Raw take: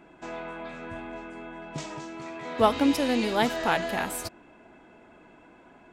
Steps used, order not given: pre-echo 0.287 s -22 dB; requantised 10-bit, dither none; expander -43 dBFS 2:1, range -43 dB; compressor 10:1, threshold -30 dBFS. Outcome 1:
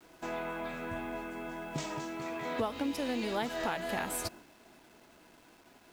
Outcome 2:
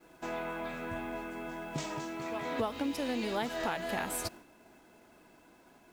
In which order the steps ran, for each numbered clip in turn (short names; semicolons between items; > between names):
compressor > pre-echo > expander > requantised; pre-echo > compressor > requantised > expander